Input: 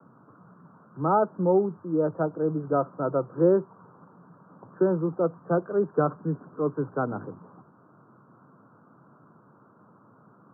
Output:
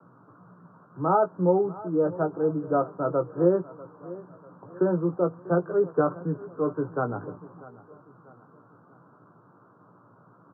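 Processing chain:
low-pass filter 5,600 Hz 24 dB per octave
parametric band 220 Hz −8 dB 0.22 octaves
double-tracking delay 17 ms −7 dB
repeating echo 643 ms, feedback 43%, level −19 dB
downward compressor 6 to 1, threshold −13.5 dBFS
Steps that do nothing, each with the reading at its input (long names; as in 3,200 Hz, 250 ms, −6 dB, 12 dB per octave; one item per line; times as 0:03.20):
low-pass filter 5,600 Hz: nothing at its input above 1,600 Hz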